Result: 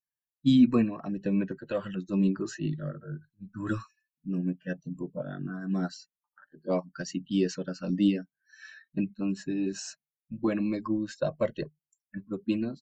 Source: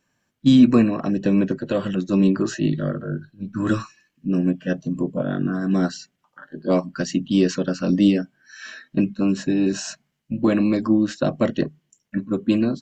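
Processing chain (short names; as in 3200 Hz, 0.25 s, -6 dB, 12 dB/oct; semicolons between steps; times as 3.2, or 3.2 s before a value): per-bin expansion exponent 1.5; 1.4–1.98 bell 1600 Hz +5.5 dB 1.4 oct; 10.85–12.25 comb 1.9 ms, depth 48%; gain -6 dB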